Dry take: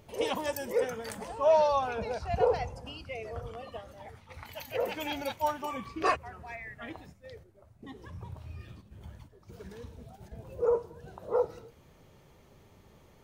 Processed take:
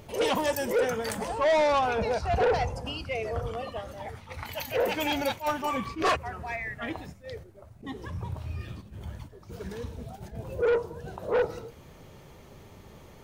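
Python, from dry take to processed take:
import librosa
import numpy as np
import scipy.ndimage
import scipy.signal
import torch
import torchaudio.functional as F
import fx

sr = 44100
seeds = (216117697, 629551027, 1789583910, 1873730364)

y = 10.0 ** (-28.5 / 20.0) * np.tanh(x / 10.0 ** (-28.5 / 20.0))
y = fx.attack_slew(y, sr, db_per_s=230.0)
y = y * librosa.db_to_amplitude(8.5)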